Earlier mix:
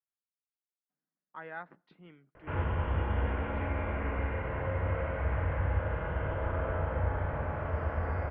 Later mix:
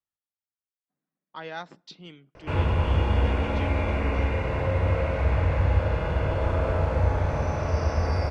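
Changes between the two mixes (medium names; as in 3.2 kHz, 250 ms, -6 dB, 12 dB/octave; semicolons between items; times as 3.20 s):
background: add band-stop 3.1 kHz, Q 5.3; master: remove four-pole ladder low-pass 2.1 kHz, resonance 40%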